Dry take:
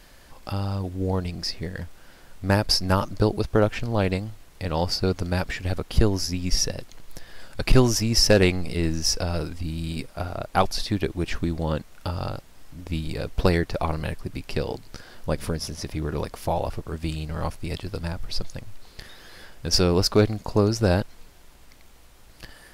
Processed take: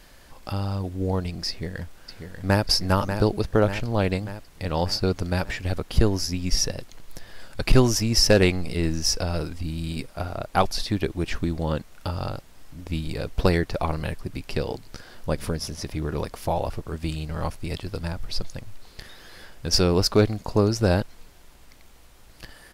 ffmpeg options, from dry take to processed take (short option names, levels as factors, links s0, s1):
-filter_complex "[0:a]asplit=2[s0][s1];[s1]afade=t=in:st=1.49:d=0.01,afade=t=out:st=2.63:d=0.01,aecho=0:1:590|1180|1770|2360|2950|3540|4130|4720:0.421697|0.253018|0.151811|0.0910864|0.0546519|0.0327911|0.0196747|0.0118048[s2];[s0][s2]amix=inputs=2:normalize=0"